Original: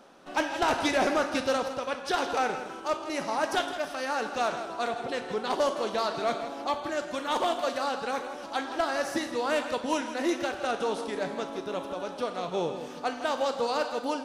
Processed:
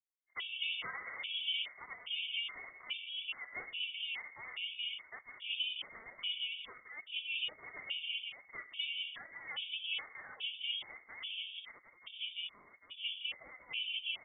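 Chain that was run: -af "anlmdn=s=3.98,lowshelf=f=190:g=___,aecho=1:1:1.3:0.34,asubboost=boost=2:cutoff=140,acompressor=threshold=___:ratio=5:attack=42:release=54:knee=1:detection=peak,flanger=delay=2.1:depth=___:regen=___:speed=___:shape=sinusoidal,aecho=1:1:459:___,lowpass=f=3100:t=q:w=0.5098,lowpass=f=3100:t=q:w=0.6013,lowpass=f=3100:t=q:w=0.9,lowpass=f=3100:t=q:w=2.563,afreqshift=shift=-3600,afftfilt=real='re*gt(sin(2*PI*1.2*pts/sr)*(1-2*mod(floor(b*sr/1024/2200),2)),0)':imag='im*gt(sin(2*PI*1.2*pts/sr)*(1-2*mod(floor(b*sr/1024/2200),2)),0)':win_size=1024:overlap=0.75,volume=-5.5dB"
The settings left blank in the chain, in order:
3.5, -28dB, 5.3, 68, 1, 0.562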